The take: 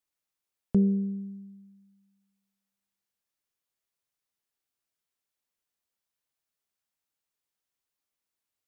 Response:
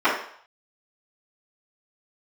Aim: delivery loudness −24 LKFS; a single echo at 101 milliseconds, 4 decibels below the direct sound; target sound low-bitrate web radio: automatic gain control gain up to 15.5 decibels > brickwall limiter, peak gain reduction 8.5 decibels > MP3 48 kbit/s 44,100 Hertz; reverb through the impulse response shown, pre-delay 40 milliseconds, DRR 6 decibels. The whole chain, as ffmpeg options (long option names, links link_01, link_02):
-filter_complex "[0:a]aecho=1:1:101:0.631,asplit=2[link_01][link_02];[1:a]atrim=start_sample=2205,adelay=40[link_03];[link_02][link_03]afir=irnorm=-1:irlink=0,volume=-26.5dB[link_04];[link_01][link_04]amix=inputs=2:normalize=0,dynaudnorm=maxgain=15.5dB,alimiter=limit=-22dB:level=0:latency=1,volume=7.5dB" -ar 44100 -c:a libmp3lame -b:a 48k